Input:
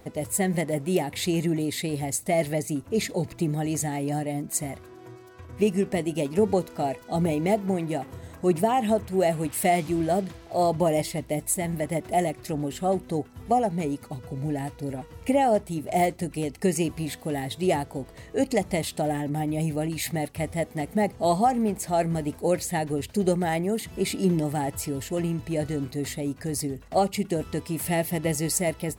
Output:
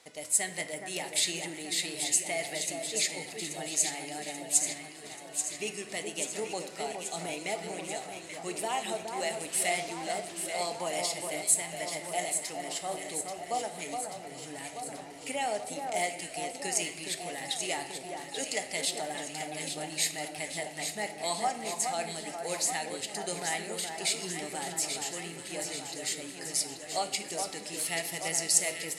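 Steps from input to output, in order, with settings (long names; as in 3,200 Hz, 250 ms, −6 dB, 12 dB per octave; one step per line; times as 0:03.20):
meter weighting curve ITU-R 468
on a send: delay that swaps between a low-pass and a high-pass 417 ms, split 1,700 Hz, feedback 79%, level −5 dB
on the sum: rectangular room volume 390 cubic metres, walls mixed, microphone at 0.47 metres
level −8 dB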